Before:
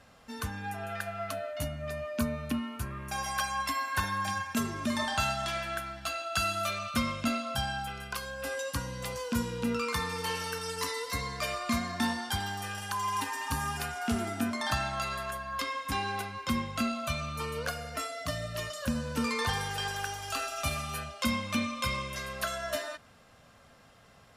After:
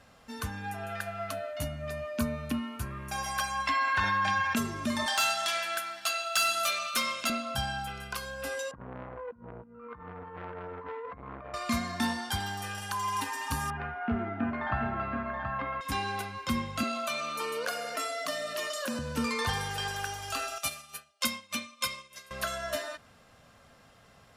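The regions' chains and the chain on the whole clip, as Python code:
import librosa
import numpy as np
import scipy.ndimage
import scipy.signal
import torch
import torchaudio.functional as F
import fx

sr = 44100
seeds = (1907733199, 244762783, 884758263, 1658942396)

y = fx.chain(x, sr, fx.lowpass(hz=3100.0, slope=12),
    fx.tilt_shelf(db=-4.5, hz=850.0),
    fx.env_flatten(amount_pct=70), at=(3.67, 4.56))
y = fx.chain(y, sr, fx.highpass(hz=440.0, slope=12),
    fx.clip_hard(threshold_db=-25.5),
    fx.high_shelf(hz=2100.0, db=8.0), at=(5.06, 7.3))
y = fx.chain(y, sr, fx.lowpass(hz=1400.0, slope=24),
    fx.over_compress(threshold_db=-39.0, ratio=-0.5),
    fx.transformer_sat(knee_hz=900.0), at=(8.71, 11.54))
y = fx.chain(y, sr, fx.lowpass(hz=2100.0, slope=24),
    fx.echo_single(ms=728, db=-6.0), at=(13.7, 15.81))
y = fx.chain(y, sr, fx.highpass(hz=270.0, slope=24),
    fx.env_flatten(amount_pct=50), at=(16.83, 18.99))
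y = fx.chain(y, sr, fx.highpass(hz=340.0, slope=6),
    fx.high_shelf(hz=3100.0, db=9.0),
    fx.upward_expand(threshold_db=-44.0, expansion=2.5), at=(20.58, 22.31))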